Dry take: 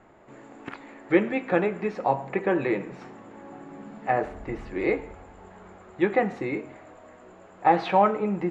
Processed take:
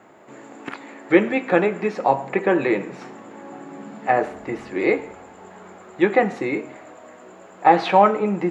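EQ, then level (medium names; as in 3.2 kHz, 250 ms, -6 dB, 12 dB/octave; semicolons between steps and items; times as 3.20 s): high-pass 160 Hz 12 dB/octave; treble shelf 5.8 kHz +8 dB; +5.5 dB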